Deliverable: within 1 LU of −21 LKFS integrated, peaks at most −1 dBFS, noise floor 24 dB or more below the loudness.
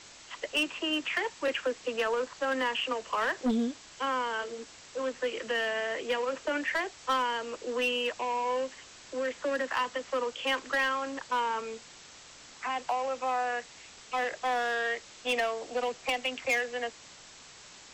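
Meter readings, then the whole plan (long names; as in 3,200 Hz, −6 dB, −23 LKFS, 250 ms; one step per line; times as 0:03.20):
share of clipped samples 1.1%; peaks flattened at −23.0 dBFS; background noise floor −52 dBFS; target noise floor −56 dBFS; integrated loudness −31.5 LKFS; sample peak −23.0 dBFS; target loudness −21.0 LKFS
→ clipped peaks rebuilt −23 dBFS
noise reduction from a noise print 6 dB
level +10.5 dB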